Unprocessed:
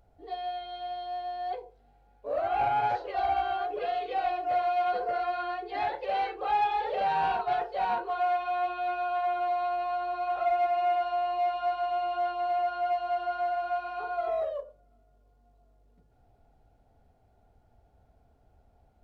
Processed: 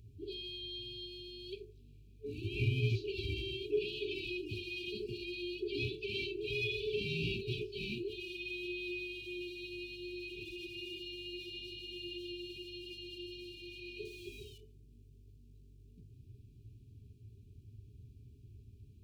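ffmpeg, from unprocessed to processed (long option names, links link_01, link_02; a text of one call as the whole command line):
ffmpeg -i in.wav -filter_complex "[0:a]asettb=1/sr,asplit=3[link_01][link_02][link_03];[link_01]atrim=end=14.054[link_04];[link_02]atrim=start=14.05:end=14.58,asetpts=PTS-STARTPTS,afade=type=in:duration=0.004:curve=qsin,afade=type=out:start_time=0.526:duration=0.004:curve=qsin,aeval=exprs='sgn(val(0))*max(abs(val(0))-0.00133,0)':channel_layout=same[link_05];[link_03]atrim=start=14.576[link_06];[link_04][link_05]acrossfade=duration=0.004:curve1=hsin:curve2=qsin[link_07];[link_07][link_06]acrossfade=duration=0.004:curve1=qsin:curve2=hsin,highpass=45,afftfilt=real='re*(1-between(b*sr/4096,440,2300))':imag='im*(1-between(b*sr/4096,440,2300))':win_size=4096:overlap=0.75,equalizer=frequency=110:width=2.2:gain=14.5,volume=4.5dB" out.wav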